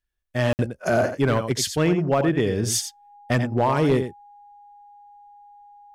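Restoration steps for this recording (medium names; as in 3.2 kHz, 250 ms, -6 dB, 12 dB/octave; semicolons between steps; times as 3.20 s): clip repair -12.5 dBFS; band-stop 820 Hz, Q 30; interpolate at 0.53 s, 59 ms; inverse comb 87 ms -9.5 dB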